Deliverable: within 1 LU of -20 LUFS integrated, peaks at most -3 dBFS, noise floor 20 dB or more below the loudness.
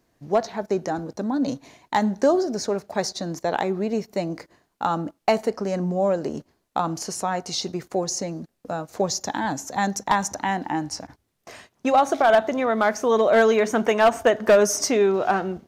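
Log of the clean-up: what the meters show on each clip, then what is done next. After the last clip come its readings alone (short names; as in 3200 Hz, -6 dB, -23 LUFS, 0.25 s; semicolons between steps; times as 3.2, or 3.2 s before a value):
clipped 0.6%; flat tops at -10.0 dBFS; loudness -23.0 LUFS; peak -10.0 dBFS; loudness target -20.0 LUFS
-> clip repair -10 dBFS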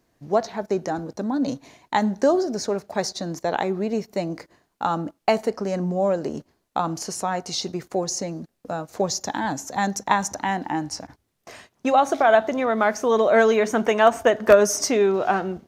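clipped 0.0%; loudness -23.0 LUFS; peak -1.0 dBFS; loudness target -20.0 LUFS
-> gain +3 dB; limiter -3 dBFS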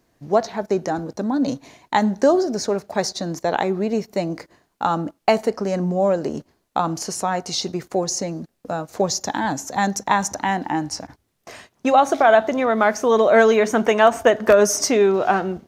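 loudness -20.0 LUFS; peak -3.0 dBFS; noise floor -70 dBFS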